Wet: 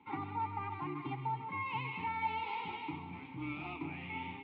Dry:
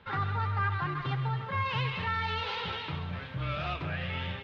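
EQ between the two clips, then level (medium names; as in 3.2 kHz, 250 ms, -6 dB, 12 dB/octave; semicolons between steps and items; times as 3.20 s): vowel filter u; distance through air 130 m; +9.5 dB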